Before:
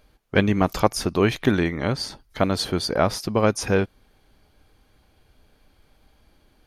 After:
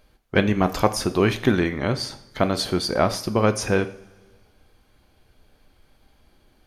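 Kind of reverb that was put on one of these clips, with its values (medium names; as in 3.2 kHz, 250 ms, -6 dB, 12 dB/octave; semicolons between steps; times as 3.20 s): two-slope reverb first 0.46 s, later 1.7 s, from -17 dB, DRR 9 dB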